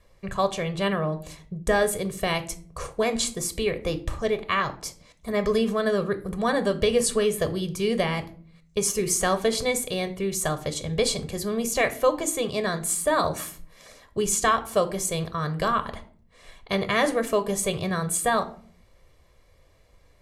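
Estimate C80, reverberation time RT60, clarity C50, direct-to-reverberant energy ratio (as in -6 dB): 20.5 dB, 0.50 s, 15.5 dB, 9.5 dB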